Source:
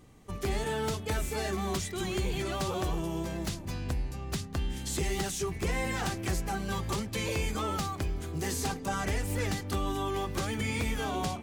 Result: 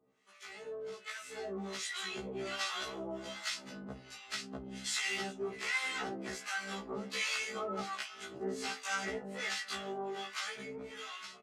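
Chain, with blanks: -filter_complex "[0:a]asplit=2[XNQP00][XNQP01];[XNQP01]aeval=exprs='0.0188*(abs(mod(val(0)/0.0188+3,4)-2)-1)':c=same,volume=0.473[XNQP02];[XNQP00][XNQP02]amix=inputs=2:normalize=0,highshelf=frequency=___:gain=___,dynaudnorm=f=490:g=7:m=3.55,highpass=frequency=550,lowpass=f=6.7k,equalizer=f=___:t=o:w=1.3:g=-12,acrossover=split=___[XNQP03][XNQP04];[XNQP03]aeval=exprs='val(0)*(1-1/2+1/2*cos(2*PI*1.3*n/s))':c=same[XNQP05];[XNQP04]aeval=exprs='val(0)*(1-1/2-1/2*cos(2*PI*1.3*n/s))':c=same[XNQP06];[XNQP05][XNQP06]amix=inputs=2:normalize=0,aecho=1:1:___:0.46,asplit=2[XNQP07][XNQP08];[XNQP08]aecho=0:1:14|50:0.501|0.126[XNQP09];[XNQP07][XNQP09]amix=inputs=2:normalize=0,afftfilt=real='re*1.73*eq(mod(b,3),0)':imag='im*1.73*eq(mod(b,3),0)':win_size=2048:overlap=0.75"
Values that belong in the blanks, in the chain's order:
2.8k, -8.5, 720, 910, 4.7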